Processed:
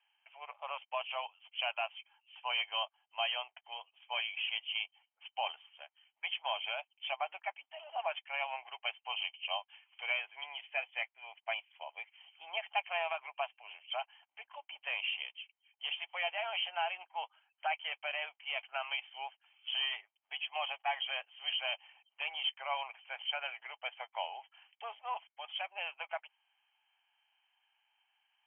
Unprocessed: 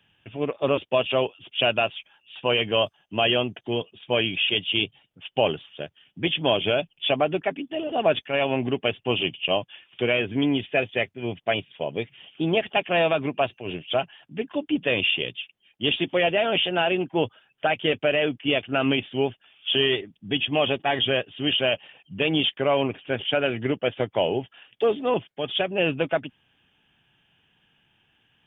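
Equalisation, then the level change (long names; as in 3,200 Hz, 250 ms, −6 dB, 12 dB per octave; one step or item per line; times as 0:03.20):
Butterworth high-pass 780 Hz 36 dB per octave
Chebyshev low-pass with heavy ripple 3,200 Hz, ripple 9 dB
high-frequency loss of the air 67 metres
−4.5 dB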